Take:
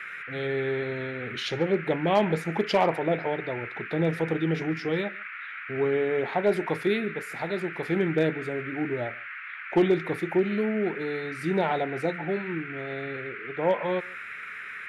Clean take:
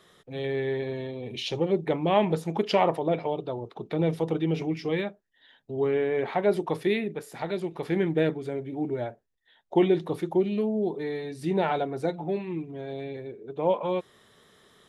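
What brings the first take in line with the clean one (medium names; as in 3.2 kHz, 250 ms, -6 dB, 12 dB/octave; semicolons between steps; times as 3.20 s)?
clip repair -13.5 dBFS; noise print and reduce 20 dB; inverse comb 145 ms -24 dB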